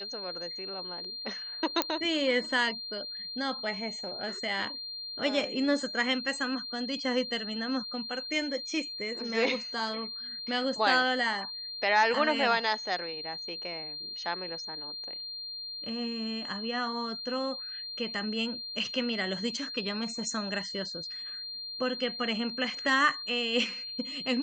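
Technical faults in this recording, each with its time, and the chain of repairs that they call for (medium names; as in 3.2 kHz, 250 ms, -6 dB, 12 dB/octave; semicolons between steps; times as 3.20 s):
whine 4.2 kHz -37 dBFS
1.82 s: pop -9 dBFS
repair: de-click; band-stop 4.2 kHz, Q 30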